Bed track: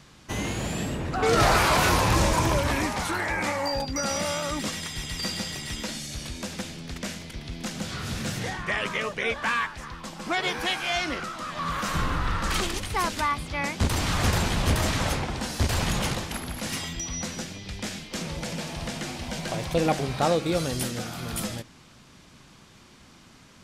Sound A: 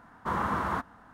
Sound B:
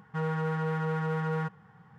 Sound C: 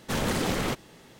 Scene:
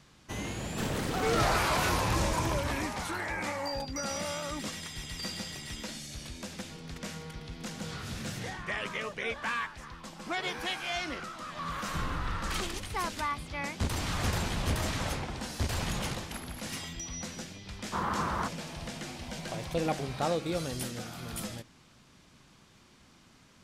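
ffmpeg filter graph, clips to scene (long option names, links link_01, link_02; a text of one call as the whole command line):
ffmpeg -i bed.wav -i cue0.wav -i cue1.wav -i cue2.wav -filter_complex "[0:a]volume=-7dB[link_01];[2:a]tremolo=f=1.5:d=0.57[link_02];[3:a]atrim=end=1.19,asetpts=PTS-STARTPTS,volume=-7dB,afade=type=in:duration=0.004:curve=hsin,afade=type=out:start_time=1.186:duration=0.004:curve=hsin,adelay=680[link_03];[link_02]atrim=end=1.98,asetpts=PTS-STARTPTS,volume=-15dB,afade=type=in:duration=0.004:curve=hsin,afade=type=out:start_time=1.976:duration=0.004:curve=hsin,adelay=6550[link_04];[1:a]atrim=end=1.13,asetpts=PTS-STARTPTS,volume=-2.5dB,afade=type=in:duration=0.004:curve=hsin,afade=type=out:start_time=1.126:duration=0.004:curve=hsin,adelay=17670[link_05];[link_01][link_03][link_04][link_05]amix=inputs=4:normalize=0" out.wav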